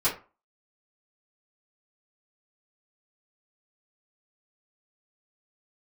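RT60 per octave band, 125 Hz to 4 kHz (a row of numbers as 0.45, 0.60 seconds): 0.35, 0.30, 0.30, 0.35, 0.30, 0.20 seconds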